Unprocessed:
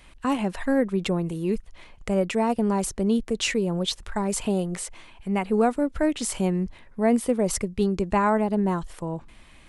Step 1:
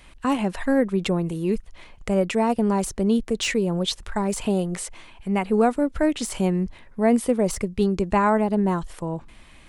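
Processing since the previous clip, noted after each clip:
de-essing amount 50%
level +2 dB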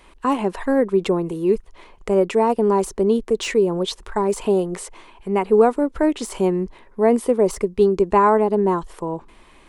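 graphic EQ with 15 bands 100 Hz −10 dB, 400 Hz +11 dB, 1,000 Hz +8 dB
level −2 dB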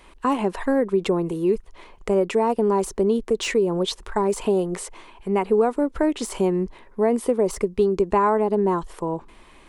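downward compressor 2.5 to 1, threshold −17 dBFS, peak gain reduction 6 dB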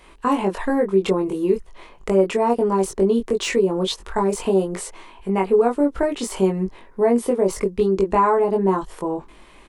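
double-tracking delay 21 ms −2.5 dB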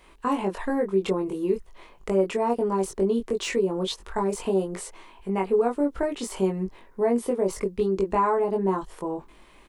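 bit reduction 12 bits
level −5.5 dB

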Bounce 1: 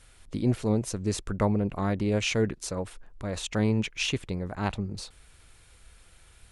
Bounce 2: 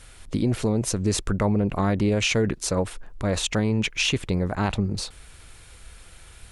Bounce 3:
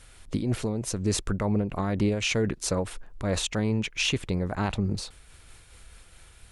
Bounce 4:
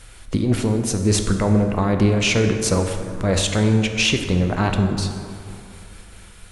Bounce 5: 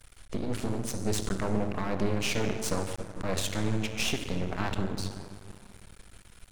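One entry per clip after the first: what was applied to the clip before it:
brickwall limiter −22 dBFS, peak gain reduction 9 dB; level +8.5 dB
amplitude modulation by smooth noise, depth 60%
dense smooth reverb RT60 2.6 s, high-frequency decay 0.45×, DRR 4.5 dB; level +7 dB
half-wave rectification; level −7 dB

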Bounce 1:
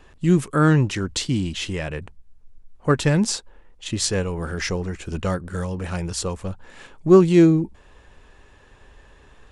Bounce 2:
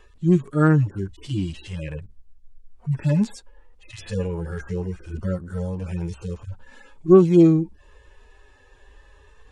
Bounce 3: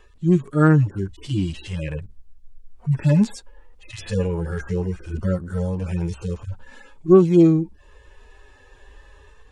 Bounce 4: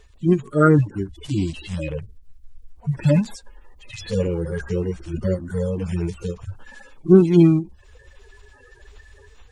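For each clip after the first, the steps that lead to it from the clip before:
harmonic-percussive split with one part muted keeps harmonic
automatic gain control gain up to 3.5 dB
spectral magnitudes quantised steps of 30 dB; every ending faded ahead of time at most 260 dB per second; level +1 dB

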